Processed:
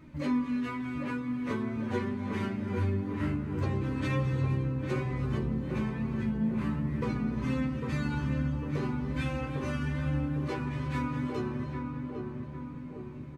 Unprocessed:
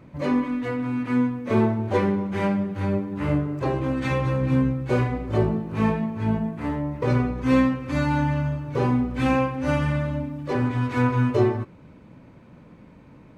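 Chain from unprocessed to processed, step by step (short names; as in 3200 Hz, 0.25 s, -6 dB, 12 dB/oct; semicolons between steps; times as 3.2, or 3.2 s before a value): bell 630 Hz -9 dB 1.4 oct; compressor, threshold -28 dBFS, peak gain reduction 11 dB; non-linear reverb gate 0.37 s rising, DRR 10 dB; flange 0.17 Hz, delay 3.1 ms, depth 7.6 ms, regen +39%; wow and flutter 15 cents; doubler 13 ms -5 dB; on a send: darkening echo 0.802 s, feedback 59%, low-pass 1200 Hz, level -4 dB; on the sum: gain +1.5 dB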